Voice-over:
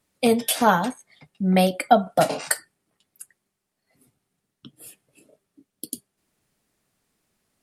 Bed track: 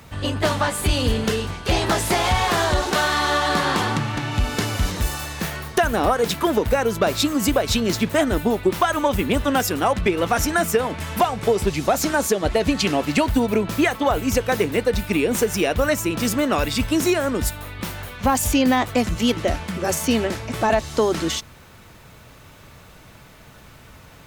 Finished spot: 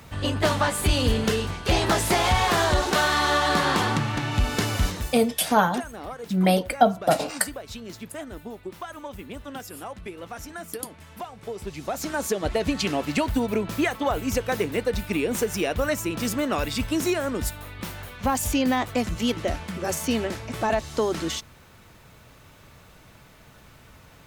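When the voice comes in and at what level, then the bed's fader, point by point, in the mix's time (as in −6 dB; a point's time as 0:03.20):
4.90 s, −1.5 dB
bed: 0:04.85 −1.5 dB
0:05.30 −17.5 dB
0:11.34 −17.5 dB
0:12.37 −5 dB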